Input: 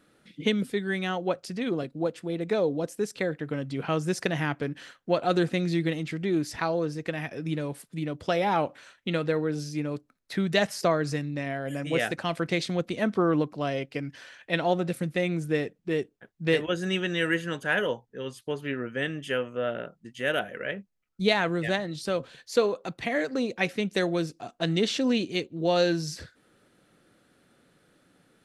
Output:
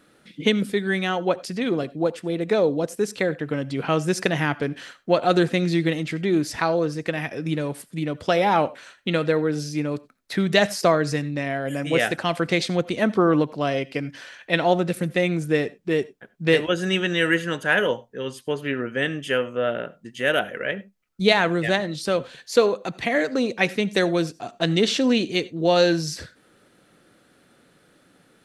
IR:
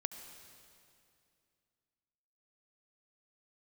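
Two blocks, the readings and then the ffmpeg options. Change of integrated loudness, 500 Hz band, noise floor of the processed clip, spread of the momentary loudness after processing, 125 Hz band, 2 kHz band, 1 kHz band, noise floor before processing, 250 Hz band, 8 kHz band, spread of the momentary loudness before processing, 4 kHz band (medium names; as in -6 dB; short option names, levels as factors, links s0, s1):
+5.5 dB, +5.5 dB, -59 dBFS, 9 LU, +4.0 dB, +6.0 dB, +6.0 dB, -67 dBFS, +5.0 dB, +6.0 dB, 9 LU, +6.0 dB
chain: -filter_complex "[0:a]asplit=2[s0][s1];[1:a]atrim=start_sample=2205,afade=t=out:st=0.15:d=0.01,atrim=end_sample=7056,lowshelf=f=140:g=-8.5[s2];[s1][s2]afir=irnorm=-1:irlink=0,volume=1.19[s3];[s0][s3]amix=inputs=2:normalize=0"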